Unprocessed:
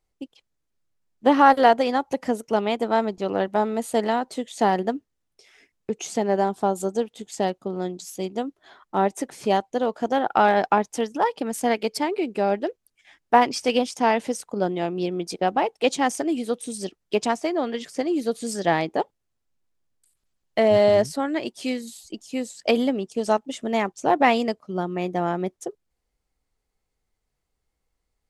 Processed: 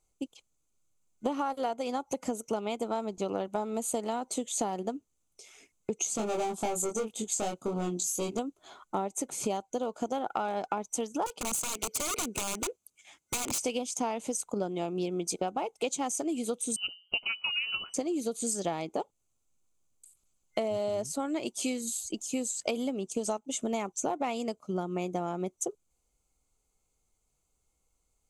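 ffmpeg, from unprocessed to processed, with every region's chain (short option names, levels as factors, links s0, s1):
-filter_complex "[0:a]asettb=1/sr,asplit=3[s0][s1][s2];[s0]atrim=end=6.174[s3];[s1]atrim=start=6.17:end=8.39,asetpts=PTS-STARTPTS,afade=t=in:d=0.004:c=qsin,afade=t=out:st=2.216:d=0.004:c=qsin,asoftclip=type=hard:threshold=0.0631,asplit=2[s4][s5];[s5]adelay=23,volume=0.75[s6];[s4][s6]amix=inputs=2:normalize=0,atrim=end_sample=97902[s7];[s2]atrim=start=8.386[s8];[s3][s7]acrossfade=d=0.004:c1=hsin:c2=qsin[s9];[s9][s8]acrossfade=d=0.004:c1=qsin:c2=hsin,asettb=1/sr,asplit=3[s10][s11][s12];[s10]atrim=end=11.264[s13];[s11]atrim=start=11.26:end=13.59,asetpts=PTS-STARTPTS,afade=t=in:d=0.004:c=qsin,afade=t=out:st=2.326:d=0.004:c=qsin,highpass=f=98:p=1,acompressor=threshold=0.0631:ratio=16:attack=3.2:release=140:knee=1:detection=peak,aeval=exprs='(mod(20*val(0)+1,2)-1)/20':c=same[s14];[s12]atrim=start=13.586[s15];[s13][s14]acrossfade=d=0.004:c1=hsin:c2=qsin[s16];[s16][s15]acrossfade=d=0.004:c1=qsin:c2=hsin,asettb=1/sr,asplit=3[s17][s18][s19];[s17]atrim=end=16.764[s20];[s18]atrim=start=16.76:end=17.94,asetpts=PTS-STARTPTS,afade=t=in:d=0.004:c=qsin,afade=t=out:st=1.176:d=0.004:c=qsin,bandreject=f=60:t=h:w=6,bandreject=f=120:t=h:w=6,bandreject=f=180:t=h:w=6,bandreject=f=240:t=h:w=6,bandreject=f=300:t=h:w=6,bandreject=f=360:t=h:w=6,lowpass=f=2700:t=q:w=0.5098,lowpass=f=2700:t=q:w=0.6013,lowpass=f=2700:t=q:w=0.9,lowpass=f=2700:t=q:w=2.563,afreqshift=-3200[s21];[s19]atrim=start=17.936[s22];[s20][s21]acrossfade=d=0.004:c1=hsin:c2=qsin[s23];[s23][s22]acrossfade=d=0.004:c1=qsin:c2=hsin,superequalizer=11b=0.316:15b=3.55:16b=2.24,acompressor=threshold=0.0398:ratio=12"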